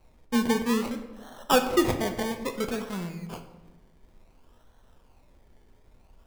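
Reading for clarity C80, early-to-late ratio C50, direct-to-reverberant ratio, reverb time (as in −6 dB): 11.5 dB, 9.5 dB, 6.0 dB, 1.1 s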